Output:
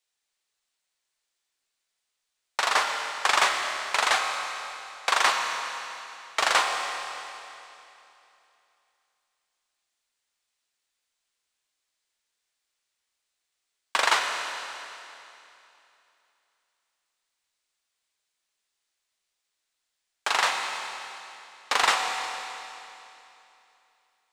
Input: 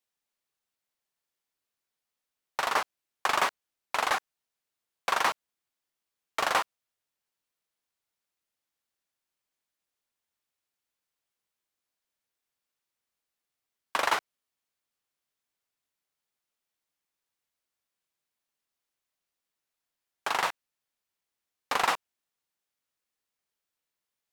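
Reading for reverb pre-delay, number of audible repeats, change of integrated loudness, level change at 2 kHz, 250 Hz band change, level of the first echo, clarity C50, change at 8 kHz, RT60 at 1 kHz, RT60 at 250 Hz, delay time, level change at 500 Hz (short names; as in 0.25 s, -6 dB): 27 ms, none, +3.5 dB, +6.5 dB, -1.0 dB, none, 3.5 dB, +8.5 dB, 2.9 s, 2.9 s, none, +2.5 dB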